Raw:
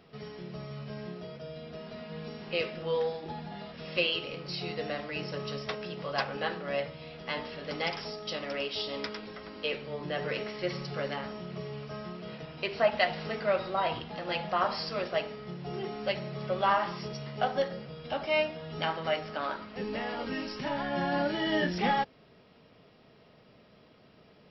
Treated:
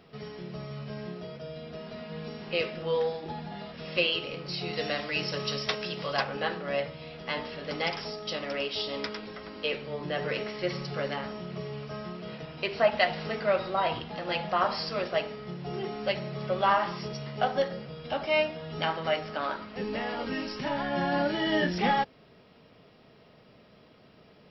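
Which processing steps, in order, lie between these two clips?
4.73–6.17 s: treble shelf 2.5 kHz +10.5 dB; trim +2 dB

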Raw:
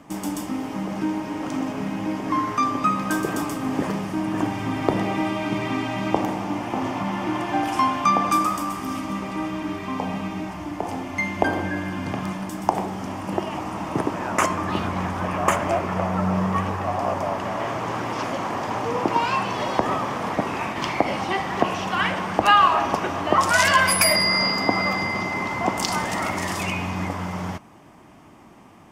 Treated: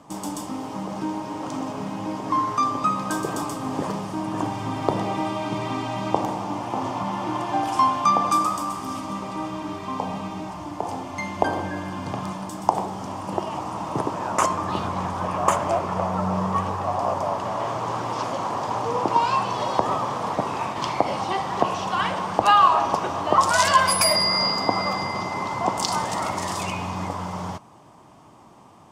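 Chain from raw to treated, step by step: graphic EQ 125/500/1000/2000/4000/8000 Hz +7/+5/+9/-4/+7/+7 dB; trim -7 dB

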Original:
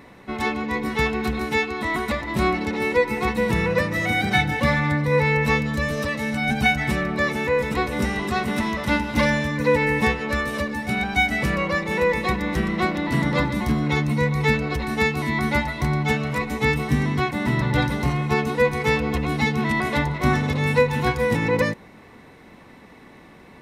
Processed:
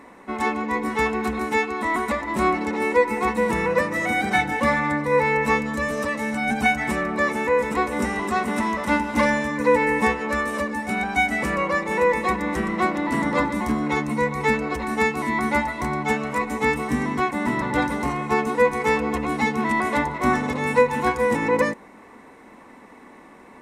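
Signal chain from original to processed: graphic EQ 125/250/500/1000/2000/4000/8000 Hz -9/+8/+4/+9/+4/-4/+10 dB; trim -6 dB

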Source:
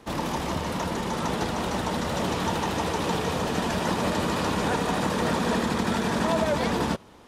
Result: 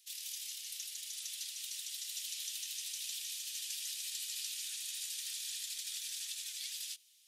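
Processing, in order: inverse Chebyshev high-pass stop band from 610 Hz, stop band 70 dB; differentiator

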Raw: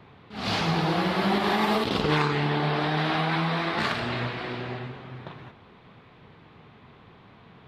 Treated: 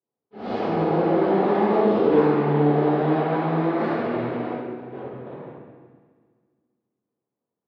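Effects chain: gate -44 dBFS, range -39 dB; 4.54–5.00 s: compressor with a negative ratio -41 dBFS, ratio -0.5; band-pass filter 440 Hz, Q 1.8; multi-head delay 68 ms, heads first and second, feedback 67%, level -17.5 dB; reverberation RT60 1.4 s, pre-delay 4 ms, DRR -9.5 dB

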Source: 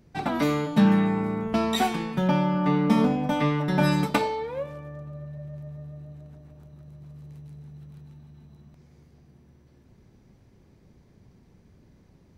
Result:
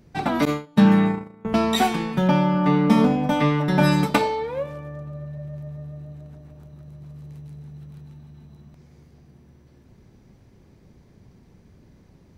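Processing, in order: 0.45–1.45 s: gate -23 dBFS, range -24 dB; trim +4 dB

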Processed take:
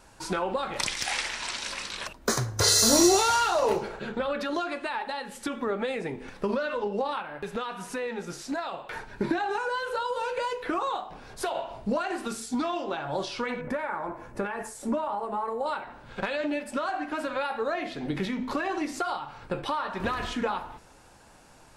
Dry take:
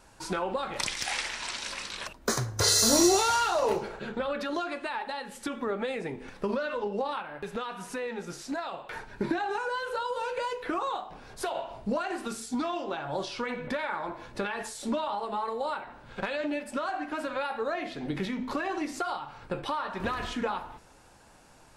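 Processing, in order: 13.61–15.66 s: peaking EQ 3.8 kHz -15 dB 1.1 oct; trim +2 dB

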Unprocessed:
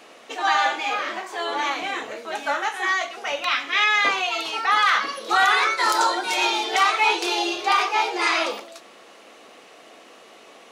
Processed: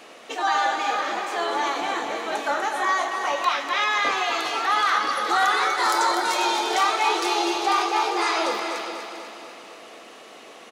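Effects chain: 2.78–3.52 s: peaking EQ 1 kHz +13.5 dB 0.27 oct; in parallel at -1.5 dB: peak limiter -18 dBFS, peak gain reduction 11 dB; on the sum: delay 397 ms -11.5 dB; dynamic bell 2.5 kHz, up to -7 dB, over -32 dBFS, Q 1.3; on a send: feedback delay 245 ms, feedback 59%, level -7.5 dB; on the sum: trim -3.5 dB

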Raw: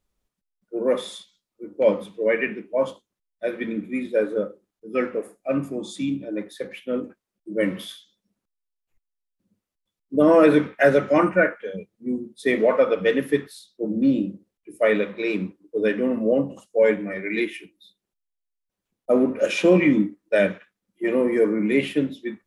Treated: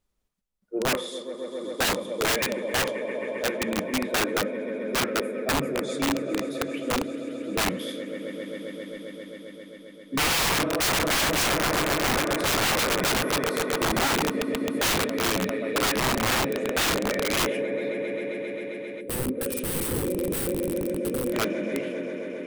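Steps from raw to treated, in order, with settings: fade out at the end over 2.73 s; on a send: echo with a slow build-up 133 ms, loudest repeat 5, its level -14 dB; on the sum: integer overflow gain 17.5 dB; time-frequency box 19.01–21.33 s, 570–7800 Hz -14 dB; trim -1 dB

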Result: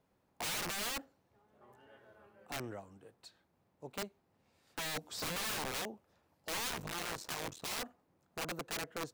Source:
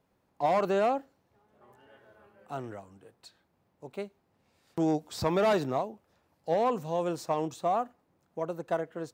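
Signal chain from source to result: 6.68–7.81 s: cycle switcher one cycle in 3, muted; integer overflow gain 30 dB; trim -3 dB

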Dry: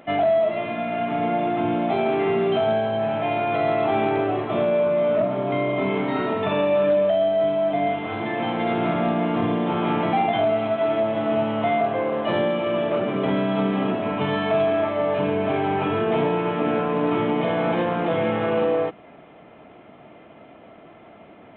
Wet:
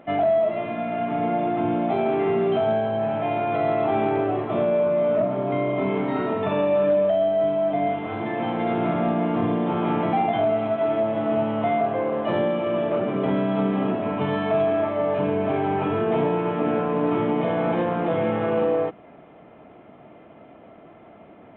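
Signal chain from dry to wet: treble shelf 2.3 kHz -9.5 dB

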